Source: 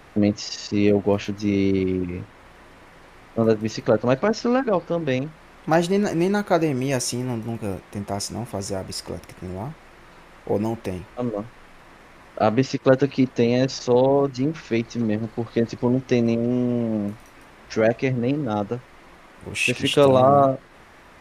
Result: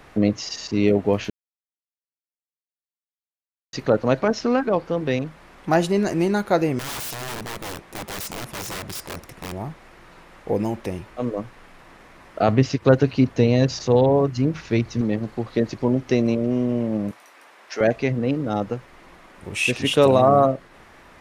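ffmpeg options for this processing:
-filter_complex "[0:a]asettb=1/sr,asplit=3[a][b][c];[a]atrim=end=6.794[d];[b]atrim=start=6.79:end=9.52,asetpts=PTS-STARTPTS,afade=t=in:d=0.004:c=qsin,afade=t=out:st=2.726:d=0.004:c=qsin,aeval=exprs='(mod(20*val(0)+1,2)-1)/20':c=same[e];[c]atrim=start=9.516[f];[d][e]acrossfade=d=0.004:c1=hsin:c2=qsin[g];[g][f]acrossfade=d=0.004:c1=qsin:c2=hsin,asettb=1/sr,asplit=3[h][i][j];[h]atrim=end=12.484[k];[i]atrim=start=12.48:end=15.01,asetpts=PTS-STARTPTS,afade=t=in:d=0.004:c=qsin,afade=t=out:st=2.526:d=0.004:c=qsin,equalizer=f=90:w=1.5:g=13.5[l];[j]atrim=start=15.006[m];[k][l]acrossfade=d=0.004:c1=hsin:c2=qsin[n];[n][m]acrossfade=d=0.004:c1=qsin:c2=hsin,asettb=1/sr,asplit=3[o][p][q];[o]atrim=end=17.114[r];[p]atrim=start=17.11:end=17.81,asetpts=PTS-STARTPTS,afade=t=in:d=0.004:c=qsin,afade=t=out:st=0.696:d=0.004:c=qsin,highpass=530[s];[q]atrim=start=17.806[t];[r][s]acrossfade=d=0.004:c1=hsin:c2=qsin[u];[u][t]acrossfade=d=0.004:c1=qsin:c2=hsin,asplit=3[v][w][x];[v]atrim=end=1.3,asetpts=PTS-STARTPTS,afade=t=out:st=1.296:d=0.004:c=hsin[y];[w]atrim=start=1.3:end=3.73,asetpts=PTS-STARTPTS,volume=0[z];[x]atrim=start=3.73,asetpts=PTS-STARTPTS,afade=t=in:d=0.004:c=hsin[aa];[y][z][aa]concat=n=3:v=0:a=1"

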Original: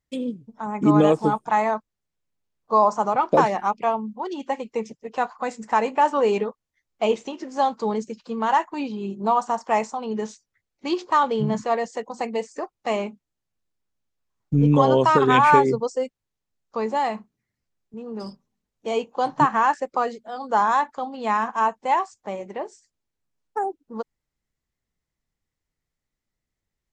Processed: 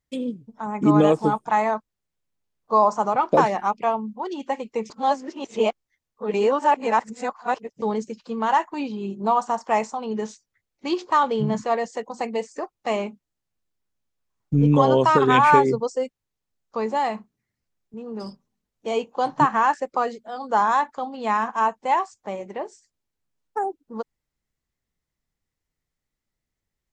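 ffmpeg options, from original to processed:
-filter_complex "[0:a]asplit=3[a][b][c];[a]atrim=end=4.902[d];[b]atrim=start=4.898:end=7.822,asetpts=PTS-STARTPTS,areverse[e];[c]atrim=start=7.818[f];[d][e]acrossfade=d=0.004:c1=hsin:c2=hsin[g];[g][f]acrossfade=d=0.004:c1=hsin:c2=hsin"

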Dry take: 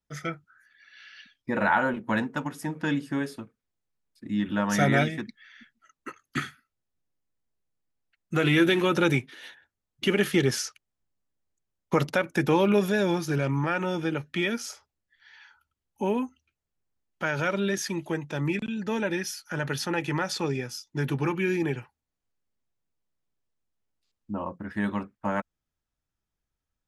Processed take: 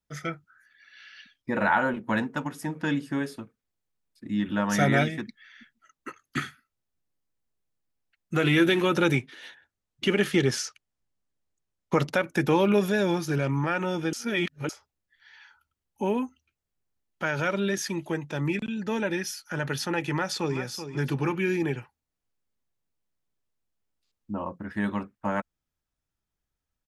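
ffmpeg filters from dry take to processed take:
-filter_complex "[0:a]asettb=1/sr,asplit=3[a][b][c];[a]atrim=end=9.154[d];[b]atrim=start=9.15:end=12.11,asetpts=PTS-STARTPTS,afade=t=in:d=0.004:c=qsin,afade=t=out:st=2.956:d=0.004:c=qsin,lowpass=9.9k[e];[c]atrim=start=12.106[f];[d][e]acrossfade=d=0.004:c1=hsin:c2=qsin[g];[g][f]acrossfade=d=0.004:c1=qsin:c2=hsin,asplit=2[h][i];[i]afade=t=in:st=20.12:d=0.01,afade=t=out:st=20.59:d=0.01,aecho=0:1:380|760|1140:0.316228|0.0790569|0.0197642[j];[h][j]amix=inputs=2:normalize=0,asplit=3[k][l][m];[k]atrim=end=14.132[n];[l]atrim=start=14.128:end=14.692,asetpts=PTS-STARTPTS,areverse[o];[m]atrim=start=14.688[p];[n][o]acrossfade=d=0.004:c1=hsin:c2=hsin[q];[q][p]acrossfade=d=0.004:c1=hsin:c2=hsin"

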